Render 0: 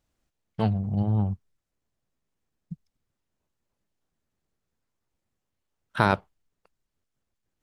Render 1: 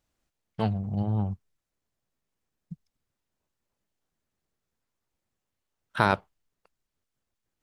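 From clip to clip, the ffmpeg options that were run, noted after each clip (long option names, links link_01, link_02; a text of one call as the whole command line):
ffmpeg -i in.wav -af "lowshelf=frequency=400:gain=-3.5" out.wav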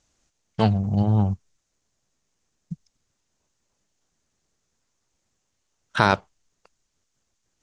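ffmpeg -i in.wav -filter_complex "[0:a]asplit=2[link_01][link_02];[link_02]alimiter=limit=-14.5dB:level=0:latency=1:release=333,volume=2.5dB[link_03];[link_01][link_03]amix=inputs=2:normalize=0,lowpass=frequency=6600:width_type=q:width=3.4" out.wav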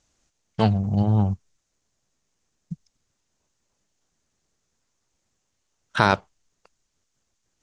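ffmpeg -i in.wav -af anull out.wav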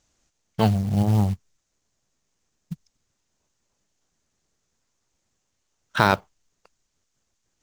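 ffmpeg -i in.wav -af "acrusher=bits=6:mode=log:mix=0:aa=0.000001" out.wav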